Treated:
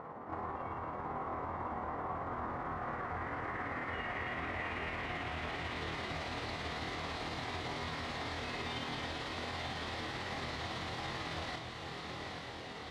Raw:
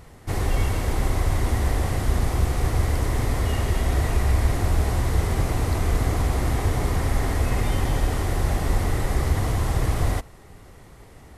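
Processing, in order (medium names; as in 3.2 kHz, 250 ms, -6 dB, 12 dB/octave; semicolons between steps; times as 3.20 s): high-pass 210 Hz 12 dB/octave; hum notches 60/120/180/240/300/360/420 Hz; dynamic bell 400 Hz, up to -5 dB, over -46 dBFS, Q 0.9; compression 3:1, threshold -49 dBFS, peak gain reduction 15 dB; time stretch by phase-locked vocoder 0.63×; low-pass sweep 1.1 kHz -> 3.9 kHz, 1.15–3.41 s; granular stretch 1.8×, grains 111 ms; on a send: echo that smears into a reverb 912 ms, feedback 56%, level -5 dB; on the sum: trim +6.5 dB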